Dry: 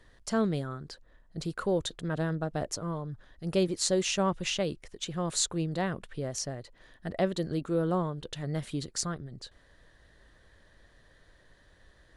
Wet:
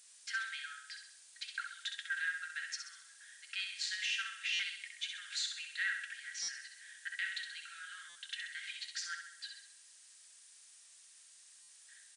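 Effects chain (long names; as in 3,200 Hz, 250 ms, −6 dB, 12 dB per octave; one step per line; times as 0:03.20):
low-pass filter 2,800 Hz 12 dB per octave
noise gate with hold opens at −47 dBFS
Butterworth high-pass 1,500 Hz 96 dB per octave
comb filter 3.7 ms, depth 60%
brickwall limiter −33 dBFS, peak gain reduction 9.5 dB
flanger 0.2 Hz, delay 8.3 ms, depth 6 ms, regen +76%
background noise violet −61 dBFS
on a send: repeating echo 65 ms, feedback 50%, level −6 dB
on the sum: buffer that repeats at 0:04.53/0:06.42/0:08.09/0:11.62, samples 256, times 10
level +10.5 dB
MP3 96 kbit/s 22,050 Hz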